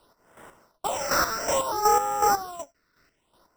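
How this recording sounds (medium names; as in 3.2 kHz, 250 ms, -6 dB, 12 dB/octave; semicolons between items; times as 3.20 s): aliases and images of a low sample rate 6.7 kHz, jitter 0%; phasing stages 6, 0.6 Hz, lowest notch 800–4300 Hz; chopped level 2.7 Hz, depth 60%, duty 35%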